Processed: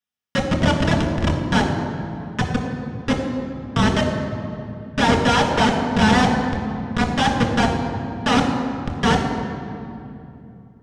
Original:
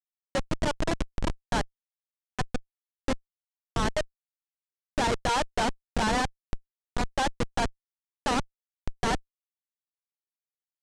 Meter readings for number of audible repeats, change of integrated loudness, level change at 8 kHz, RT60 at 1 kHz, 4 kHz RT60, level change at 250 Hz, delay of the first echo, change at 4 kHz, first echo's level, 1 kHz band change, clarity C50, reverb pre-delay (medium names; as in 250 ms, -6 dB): no echo, +10.0 dB, +5.0 dB, 2.5 s, 1.7 s, +15.0 dB, no echo, +10.0 dB, no echo, +9.0 dB, 4.0 dB, 3 ms